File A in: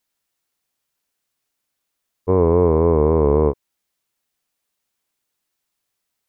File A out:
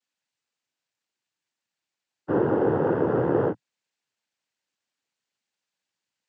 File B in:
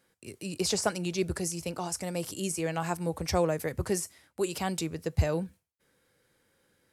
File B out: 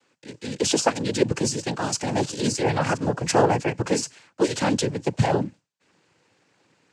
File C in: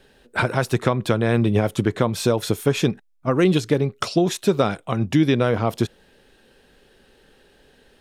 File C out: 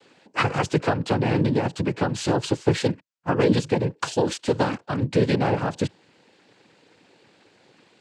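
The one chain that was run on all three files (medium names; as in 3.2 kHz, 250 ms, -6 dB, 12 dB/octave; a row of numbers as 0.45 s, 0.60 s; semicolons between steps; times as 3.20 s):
noise-vocoded speech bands 8; gain riding within 4 dB 2 s; normalise loudness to -24 LUFS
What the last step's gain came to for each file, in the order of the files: -5.0 dB, +8.5 dB, -2.5 dB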